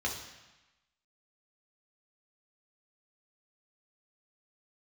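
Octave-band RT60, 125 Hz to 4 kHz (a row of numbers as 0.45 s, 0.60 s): 1.0 s, 1.0 s, 0.95 s, 1.1 s, 1.2 s, 1.1 s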